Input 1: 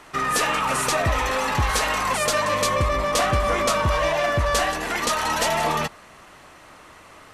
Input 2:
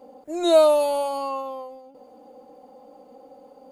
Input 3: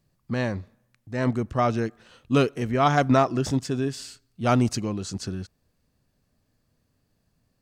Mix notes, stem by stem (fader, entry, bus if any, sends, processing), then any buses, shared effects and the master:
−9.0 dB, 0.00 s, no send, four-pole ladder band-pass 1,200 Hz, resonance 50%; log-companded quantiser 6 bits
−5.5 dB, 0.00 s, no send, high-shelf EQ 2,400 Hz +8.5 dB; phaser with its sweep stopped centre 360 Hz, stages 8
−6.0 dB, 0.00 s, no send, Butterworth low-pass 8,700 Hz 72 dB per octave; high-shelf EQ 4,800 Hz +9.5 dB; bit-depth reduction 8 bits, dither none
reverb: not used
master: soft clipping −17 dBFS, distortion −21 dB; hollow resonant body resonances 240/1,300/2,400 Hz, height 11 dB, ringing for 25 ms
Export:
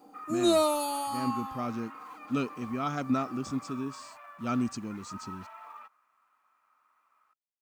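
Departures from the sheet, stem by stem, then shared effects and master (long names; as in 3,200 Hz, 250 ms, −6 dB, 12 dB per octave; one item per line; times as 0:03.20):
stem 1 −9.0 dB → −18.0 dB
stem 3 −6.0 dB → −16.5 dB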